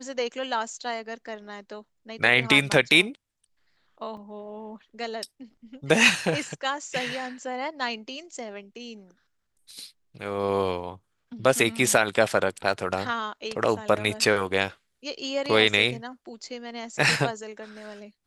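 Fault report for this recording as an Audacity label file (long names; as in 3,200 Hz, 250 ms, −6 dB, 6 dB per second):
4.170000	4.170000	drop-out 3.6 ms
12.730000	12.730000	drop-out 2.9 ms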